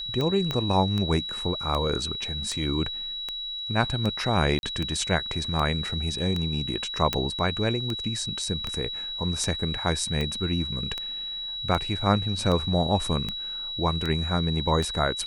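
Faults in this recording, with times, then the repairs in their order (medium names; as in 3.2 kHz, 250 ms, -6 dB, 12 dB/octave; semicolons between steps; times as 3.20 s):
tick 78 rpm -16 dBFS
whine 3.9 kHz -31 dBFS
0.51 s: pop -14 dBFS
4.59–4.63 s: dropout 41 ms
7.13 s: pop -9 dBFS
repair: de-click; band-stop 3.9 kHz, Q 30; interpolate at 4.59 s, 41 ms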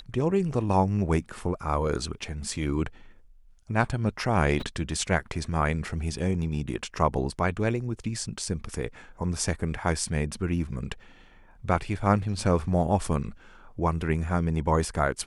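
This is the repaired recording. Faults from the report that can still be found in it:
0.51 s: pop
7.13 s: pop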